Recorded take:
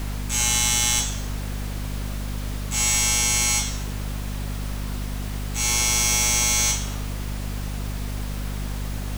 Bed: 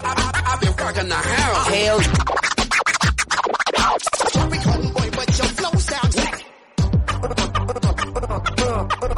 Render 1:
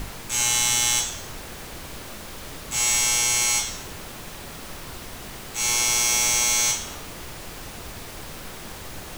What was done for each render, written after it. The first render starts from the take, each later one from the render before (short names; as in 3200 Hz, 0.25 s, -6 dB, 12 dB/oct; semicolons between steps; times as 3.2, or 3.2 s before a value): notches 50/100/150/200/250/300 Hz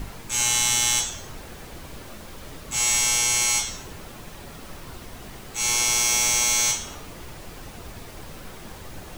denoiser 6 dB, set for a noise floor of -39 dBFS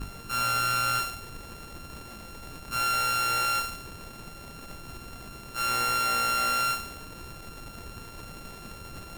sample sorter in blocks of 32 samples; tube stage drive 22 dB, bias 0.6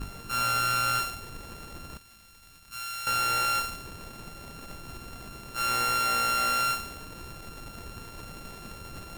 1.97–3.07 passive tone stack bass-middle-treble 5-5-5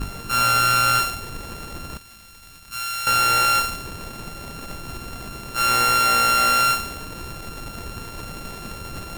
gain +8.5 dB